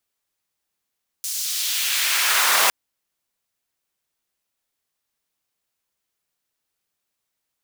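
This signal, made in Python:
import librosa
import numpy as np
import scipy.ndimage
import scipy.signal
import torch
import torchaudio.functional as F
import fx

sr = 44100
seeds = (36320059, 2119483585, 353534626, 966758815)

y = fx.riser_noise(sr, seeds[0], length_s=1.46, colour='pink', kind='highpass', start_hz=6400.0, end_hz=850.0, q=1.2, swell_db=8.0, law='exponential')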